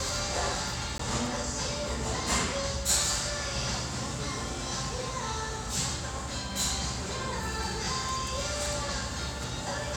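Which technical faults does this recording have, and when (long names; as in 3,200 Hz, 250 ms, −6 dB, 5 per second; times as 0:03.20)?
0:00.98–0:00.99: drop-out 14 ms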